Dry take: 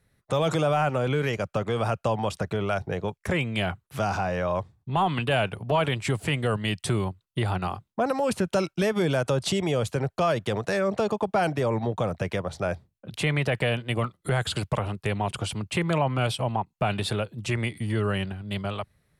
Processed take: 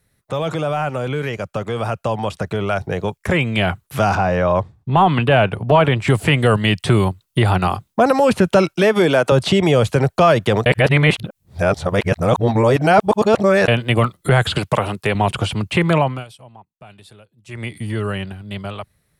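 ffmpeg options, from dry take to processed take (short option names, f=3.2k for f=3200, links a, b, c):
-filter_complex "[0:a]asettb=1/sr,asplit=3[a][b][c];[a]atrim=end=4.154[d];[b]atrim=start=4.15:end=6.08,asetpts=PTS-STARTPTS,afade=t=in:d=0.004:c=qsin,afade=t=out:st=1.926:d=0.004:c=qsin,lowpass=f=2k:p=1[e];[c]atrim=start=6.076[f];[d][e]acrossfade=d=0.004:c1=hsin:c2=qsin[g];[g][f]acrossfade=d=0.004:c1=qsin:c2=hsin,asettb=1/sr,asplit=3[h][i][j];[h]atrim=end=8.764[k];[i]atrim=start=8.76:end=9.32,asetpts=PTS-STARTPTS,afade=t=in:d=0.004:c=qsin,afade=t=out:st=0.556:d=0.004:c=qsin,highpass=220[l];[j]atrim=start=9.316[m];[k][l]acrossfade=d=0.004:c1=hsin:c2=qsin[n];[n][m]acrossfade=d=0.004:c1=qsin:c2=hsin,asettb=1/sr,asplit=3[o][p][q];[o]atrim=end=14.584[r];[p]atrim=start=14.58:end=15.15,asetpts=PTS-STARTPTS,afade=t=in:d=0.004:c=qsin,afade=t=out:st=0.566:d=0.004:c=qsin,highpass=f=200:p=1[s];[q]atrim=start=15.146[t];[r][s]acrossfade=d=0.004:c1=hsin:c2=qsin[u];[u][t]acrossfade=d=0.004:c1=qsin:c2=hsin,asplit=5[v][w][x][y][z];[v]atrim=end=10.662[aa];[w]atrim=start=10.658:end=13.682,asetpts=PTS-STARTPTS,areverse[ab];[x]atrim=start=13.678:end=16.25,asetpts=PTS-STARTPTS,afade=t=out:st=2.292:d=0.28:silence=0.0668344[ac];[y]atrim=start=16.25:end=17.46,asetpts=PTS-STARTPTS,volume=-23.5dB[ad];[z]atrim=start=17.46,asetpts=PTS-STARTPTS,afade=t=in:d=0.28:silence=0.0668344[ae];[aa][ab]acrossfade=d=0.004:c1=hsin:c2=hsin[af];[ac][ad][ae]concat=n=3:v=0:a=1[ag];[af][ag]acrossfade=d=0.004:c1=hsin:c2=hsin,acrossover=split=3500[ah][ai];[ai]acompressor=threshold=-51dB:ratio=4:attack=1:release=60[aj];[ah][aj]amix=inputs=2:normalize=0,highshelf=f=5.4k:g=8.5,dynaudnorm=f=480:g=13:m=9.5dB,volume=2dB"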